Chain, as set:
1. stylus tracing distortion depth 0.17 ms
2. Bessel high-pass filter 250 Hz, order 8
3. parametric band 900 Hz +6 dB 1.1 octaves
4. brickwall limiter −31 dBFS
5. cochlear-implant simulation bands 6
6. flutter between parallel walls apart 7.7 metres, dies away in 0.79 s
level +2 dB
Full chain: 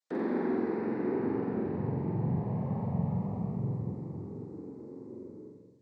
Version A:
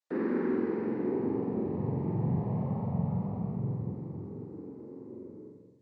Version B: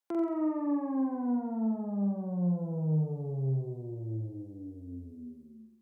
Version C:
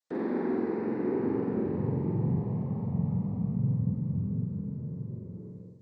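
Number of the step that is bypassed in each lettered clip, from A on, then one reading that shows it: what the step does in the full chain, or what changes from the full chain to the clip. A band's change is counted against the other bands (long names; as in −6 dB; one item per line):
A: 1, 1 kHz band −2.0 dB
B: 5, 500 Hz band −4.5 dB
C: 2, 1 kHz band −4.0 dB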